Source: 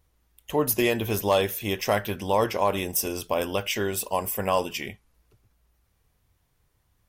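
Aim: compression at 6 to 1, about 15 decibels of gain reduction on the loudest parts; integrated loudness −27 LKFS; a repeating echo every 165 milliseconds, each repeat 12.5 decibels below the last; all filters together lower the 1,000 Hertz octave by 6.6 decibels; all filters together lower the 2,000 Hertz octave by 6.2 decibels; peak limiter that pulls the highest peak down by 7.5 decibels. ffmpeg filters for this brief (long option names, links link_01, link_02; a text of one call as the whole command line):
ffmpeg -i in.wav -af "equalizer=frequency=1000:width_type=o:gain=-7,equalizer=frequency=2000:width_type=o:gain=-6.5,acompressor=threshold=-37dB:ratio=6,alimiter=level_in=7.5dB:limit=-24dB:level=0:latency=1,volume=-7.5dB,aecho=1:1:165|330|495:0.237|0.0569|0.0137,volume=15.5dB" out.wav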